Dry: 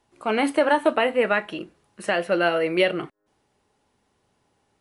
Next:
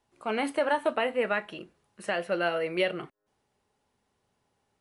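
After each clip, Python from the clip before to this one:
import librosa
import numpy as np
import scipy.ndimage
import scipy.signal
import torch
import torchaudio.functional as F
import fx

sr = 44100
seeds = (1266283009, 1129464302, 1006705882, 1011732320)

y = fx.peak_eq(x, sr, hz=310.0, db=-6.5, octaves=0.2)
y = F.gain(torch.from_numpy(y), -6.5).numpy()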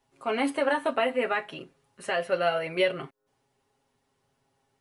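y = x + 0.8 * np.pad(x, (int(7.4 * sr / 1000.0), 0))[:len(x)]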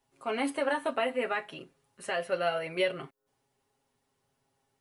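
y = fx.high_shelf(x, sr, hz=8300.0, db=6.5)
y = F.gain(torch.from_numpy(y), -4.0).numpy()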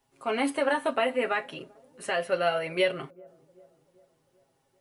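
y = fx.echo_wet_lowpass(x, sr, ms=389, feedback_pct=52, hz=560.0, wet_db=-22.5)
y = F.gain(torch.from_numpy(y), 3.5).numpy()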